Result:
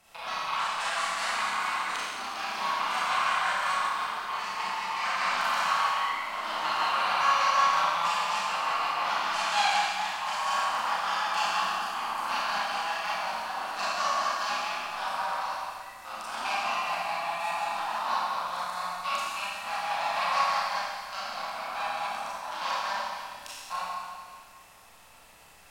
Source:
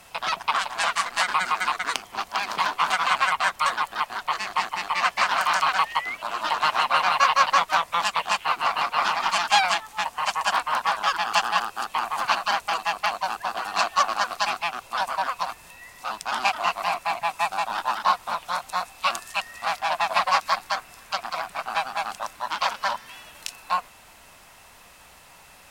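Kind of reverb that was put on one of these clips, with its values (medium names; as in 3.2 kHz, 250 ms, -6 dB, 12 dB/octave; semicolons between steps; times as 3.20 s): Schroeder reverb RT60 1.9 s, combs from 28 ms, DRR -9 dB; trim -14 dB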